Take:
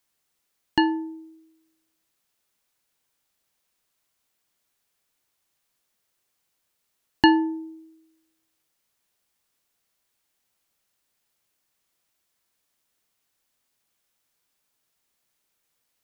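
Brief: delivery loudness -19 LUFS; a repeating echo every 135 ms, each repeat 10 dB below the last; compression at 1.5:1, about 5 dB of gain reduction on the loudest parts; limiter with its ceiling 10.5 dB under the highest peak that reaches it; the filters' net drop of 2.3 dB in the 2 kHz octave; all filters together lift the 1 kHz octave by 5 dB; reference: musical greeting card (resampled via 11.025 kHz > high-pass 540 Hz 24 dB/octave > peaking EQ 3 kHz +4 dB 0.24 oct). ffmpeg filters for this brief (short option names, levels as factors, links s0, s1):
-af "equalizer=f=1000:t=o:g=6.5,equalizer=f=2000:t=o:g=-5,acompressor=threshold=0.0708:ratio=1.5,alimiter=limit=0.158:level=0:latency=1,aecho=1:1:135|270|405|540:0.316|0.101|0.0324|0.0104,aresample=11025,aresample=44100,highpass=f=540:w=0.5412,highpass=f=540:w=1.3066,equalizer=f=3000:t=o:w=0.24:g=4,volume=5.31"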